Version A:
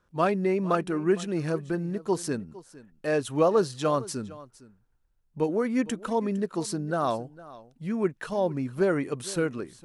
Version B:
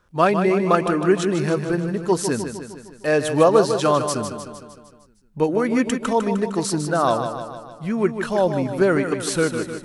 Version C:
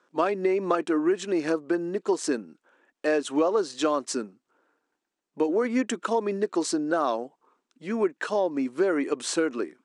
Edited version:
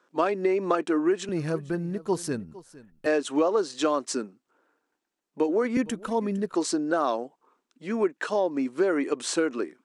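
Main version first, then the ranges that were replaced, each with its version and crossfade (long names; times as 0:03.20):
C
0:01.29–0:03.06: punch in from A
0:05.77–0:06.54: punch in from A
not used: B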